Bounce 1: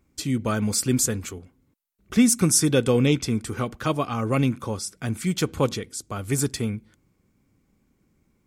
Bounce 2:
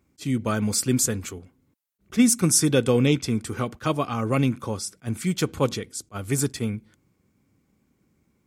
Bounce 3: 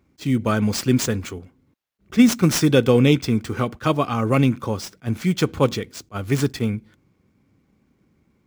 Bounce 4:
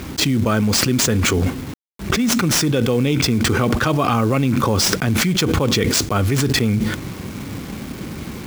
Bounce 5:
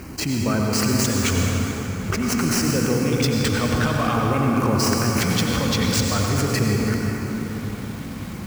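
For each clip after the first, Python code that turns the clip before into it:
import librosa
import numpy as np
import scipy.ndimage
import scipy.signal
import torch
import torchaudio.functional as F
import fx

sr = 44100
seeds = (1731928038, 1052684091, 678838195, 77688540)

y1 = scipy.signal.sosfilt(scipy.signal.butter(2, 63.0, 'highpass', fs=sr, output='sos'), x)
y1 = fx.attack_slew(y1, sr, db_per_s=490.0)
y2 = scipy.ndimage.median_filter(y1, 5, mode='constant')
y2 = F.gain(torch.from_numpy(y2), 4.5).numpy()
y3 = fx.quant_companded(y2, sr, bits=6)
y3 = fx.env_flatten(y3, sr, amount_pct=100)
y3 = F.gain(torch.from_numpy(y3), -8.0).numpy()
y4 = fx.filter_lfo_notch(y3, sr, shape='square', hz=0.48, low_hz=380.0, high_hz=3500.0, q=2.4)
y4 = fx.rev_plate(y4, sr, seeds[0], rt60_s=4.5, hf_ratio=0.55, predelay_ms=75, drr_db=-1.0)
y4 = F.gain(torch.from_numpy(y4), -6.0).numpy()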